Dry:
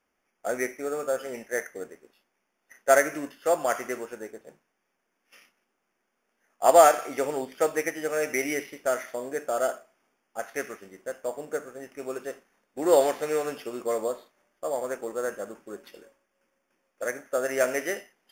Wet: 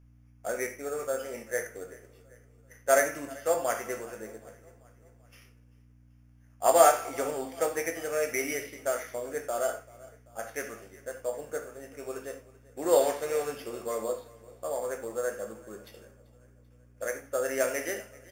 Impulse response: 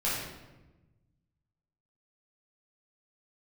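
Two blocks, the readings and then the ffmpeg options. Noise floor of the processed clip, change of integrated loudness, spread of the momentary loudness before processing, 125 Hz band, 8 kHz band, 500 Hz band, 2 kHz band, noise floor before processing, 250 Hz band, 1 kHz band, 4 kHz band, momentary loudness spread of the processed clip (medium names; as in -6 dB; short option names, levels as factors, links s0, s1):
-58 dBFS, -3.0 dB, 18 LU, +0.5 dB, 0.0 dB, -3.0 dB, -3.5 dB, -78 dBFS, -5.0 dB, -3.5 dB, -2.0 dB, 18 LU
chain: -filter_complex "[0:a]asplit=2[s0][s1];[s1]adelay=18,volume=0.266[s2];[s0][s2]amix=inputs=2:normalize=0,aeval=exprs='val(0)+0.00251*(sin(2*PI*60*n/s)+sin(2*PI*2*60*n/s)/2+sin(2*PI*3*60*n/s)/3+sin(2*PI*4*60*n/s)/4+sin(2*PI*5*60*n/s)/5)':c=same,highshelf=f=4700:g=5.5,aecho=1:1:388|776|1164|1552:0.0841|0.0454|0.0245|0.0132,asplit=2[s3][s4];[1:a]atrim=start_sample=2205,atrim=end_sample=4410[s5];[s4][s5]afir=irnorm=-1:irlink=0,volume=0.266[s6];[s3][s6]amix=inputs=2:normalize=0,volume=0.473"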